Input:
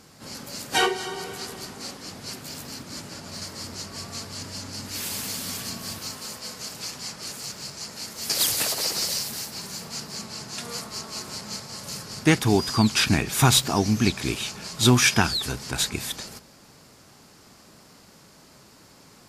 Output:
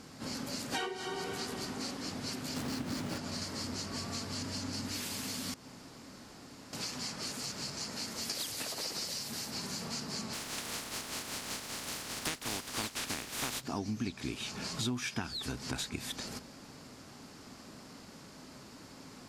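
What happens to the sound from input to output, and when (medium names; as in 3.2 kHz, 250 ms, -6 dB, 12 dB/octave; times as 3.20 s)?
2.56–3.18 s: square wave that keeps the level
5.54–6.73 s: room tone
10.32–13.60 s: spectral contrast reduction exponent 0.22
whole clip: peaking EQ 260 Hz +7 dB 0.37 oct; compression 6:1, threshold -34 dBFS; treble shelf 11 kHz -11 dB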